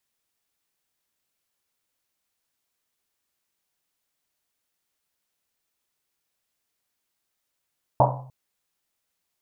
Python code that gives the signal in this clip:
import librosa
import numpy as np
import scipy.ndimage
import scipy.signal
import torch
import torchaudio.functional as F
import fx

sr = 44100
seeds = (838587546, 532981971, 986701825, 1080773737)

y = fx.risset_drum(sr, seeds[0], length_s=0.3, hz=130.0, decay_s=0.74, noise_hz=770.0, noise_width_hz=490.0, noise_pct=60)